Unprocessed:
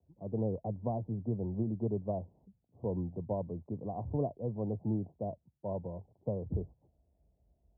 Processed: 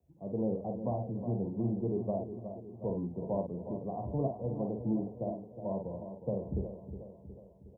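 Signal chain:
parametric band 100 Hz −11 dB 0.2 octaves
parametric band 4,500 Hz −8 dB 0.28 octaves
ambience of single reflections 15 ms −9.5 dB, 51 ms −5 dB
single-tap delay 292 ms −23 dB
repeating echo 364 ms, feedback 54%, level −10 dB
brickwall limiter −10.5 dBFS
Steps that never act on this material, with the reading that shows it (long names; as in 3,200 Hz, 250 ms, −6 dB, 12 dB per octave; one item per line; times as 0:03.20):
parametric band 4,500 Hz: nothing at its input above 1,000 Hz
brickwall limiter −10.5 dBFS: peak of its input −20.5 dBFS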